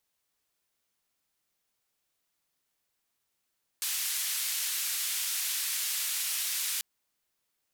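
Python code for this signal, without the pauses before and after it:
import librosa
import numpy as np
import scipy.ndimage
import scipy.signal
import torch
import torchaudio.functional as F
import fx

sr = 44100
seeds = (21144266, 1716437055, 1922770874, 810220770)

y = fx.band_noise(sr, seeds[0], length_s=2.99, low_hz=2100.0, high_hz=15000.0, level_db=-32.0)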